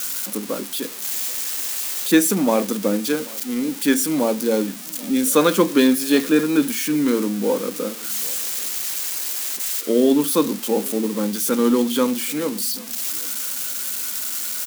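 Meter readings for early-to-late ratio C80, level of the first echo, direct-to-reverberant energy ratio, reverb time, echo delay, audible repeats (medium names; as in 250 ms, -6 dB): no reverb, -23.5 dB, no reverb, no reverb, 785 ms, 1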